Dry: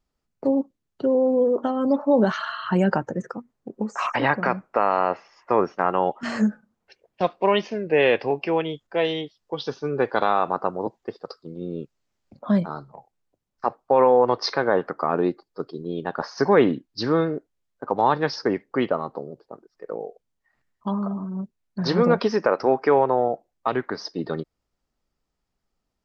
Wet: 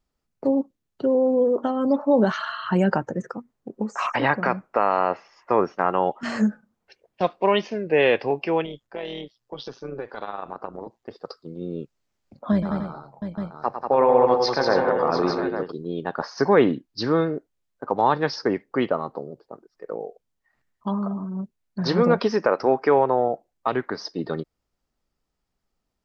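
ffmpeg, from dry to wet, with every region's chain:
ffmpeg -i in.wav -filter_complex "[0:a]asettb=1/sr,asplit=3[link_01][link_02][link_03];[link_01]atrim=end=8.654[link_04];[link_02]atrim=start=8.65:end=11.11,asetpts=PTS-STARTPTS,afade=type=in:duration=0.004:curve=qsin,afade=type=out:start_time=2.456:duration=0.004:curve=qsin,acompressor=threshold=-28dB:ratio=2.5:attack=3.2:release=140:knee=1:detection=peak,tremolo=f=120:d=0.667[link_05];[link_03]atrim=start=11.106[link_06];[link_04][link_05]acrossfade=duration=0.004:curve1=hsin:curve2=qsin[link_07];[link_07][link_06]acrossfade=duration=0.004:curve1=qsin:curve2=hsin,asettb=1/sr,asplit=3[link_08][link_09][link_10];[link_08]atrim=end=12.524[link_11];[link_09]atrim=start=12.52:end=15.72,asetpts=PTS-STARTPTS,afade=type=in:duration=0.004:curve=qsin,afade=type=out:start_time=3.196:duration=0.004:curve=qsin,tremolo=f=110:d=0.333,aecho=1:1:103|190|277|698|854:0.376|0.531|0.316|0.316|0.376,atrim=end_sample=141120[link_12];[link_10]atrim=start=15.716[link_13];[link_11][link_12]acrossfade=duration=0.004:curve1=hsin:curve2=qsin[link_14];[link_14][link_13]acrossfade=duration=0.004:curve1=qsin:curve2=hsin" out.wav

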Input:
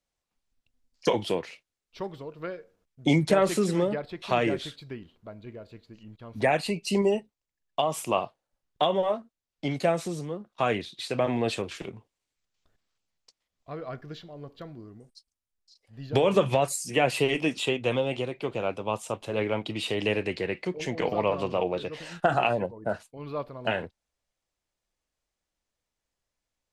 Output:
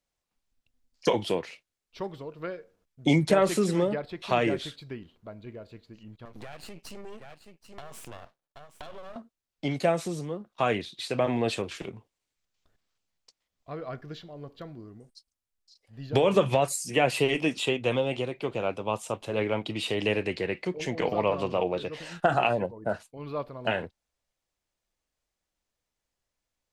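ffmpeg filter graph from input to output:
ffmpeg -i in.wav -filter_complex "[0:a]asettb=1/sr,asplit=3[link_01][link_02][link_03];[link_01]atrim=end=6.254[link_04];[link_02]atrim=start=6.25:end=9.16,asetpts=PTS-STARTPTS,afade=type=in:duration=0.004:curve=qsin,afade=type=out:start_time=2.906:duration=0.004:curve=qsin,aeval=exprs='max(val(0),0)':channel_layout=same,aecho=1:1:775:0.106,atrim=end_sample=128331,acompressor=threshold=-39dB:ratio=5:attack=3.2:release=140:knee=1:detection=peak[link_05];[link_03]atrim=start=9.156[link_06];[link_04][link_05]acrossfade=duration=0.004:curve1=hsin:curve2=qsin[link_07];[link_07][link_06]acrossfade=duration=0.004:curve1=qsin:curve2=hsin" out.wav

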